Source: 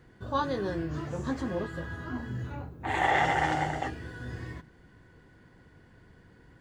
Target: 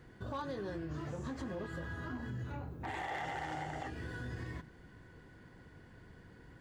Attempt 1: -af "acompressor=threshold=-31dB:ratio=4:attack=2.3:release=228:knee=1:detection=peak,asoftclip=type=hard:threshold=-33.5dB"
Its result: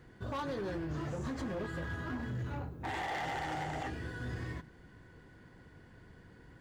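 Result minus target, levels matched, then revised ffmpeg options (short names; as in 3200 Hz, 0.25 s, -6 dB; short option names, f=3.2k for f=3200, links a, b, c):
compressor: peak gain reduction -4.5 dB
-af "acompressor=threshold=-37dB:ratio=4:attack=2.3:release=228:knee=1:detection=peak,asoftclip=type=hard:threshold=-33.5dB"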